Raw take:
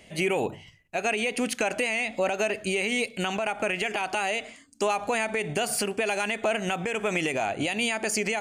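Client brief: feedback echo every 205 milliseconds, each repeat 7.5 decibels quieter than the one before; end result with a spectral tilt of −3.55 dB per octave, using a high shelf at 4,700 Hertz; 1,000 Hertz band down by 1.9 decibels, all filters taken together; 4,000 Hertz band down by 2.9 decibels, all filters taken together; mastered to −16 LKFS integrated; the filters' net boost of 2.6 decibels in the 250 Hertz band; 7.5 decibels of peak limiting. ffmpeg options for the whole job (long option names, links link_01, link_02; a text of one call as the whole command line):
ffmpeg -i in.wav -af "equalizer=frequency=250:width_type=o:gain=3.5,equalizer=frequency=1000:width_type=o:gain=-3,equalizer=frequency=4000:width_type=o:gain=-6.5,highshelf=frequency=4700:gain=4.5,alimiter=limit=-20dB:level=0:latency=1,aecho=1:1:205|410|615|820|1025:0.422|0.177|0.0744|0.0312|0.0131,volume=13.5dB" out.wav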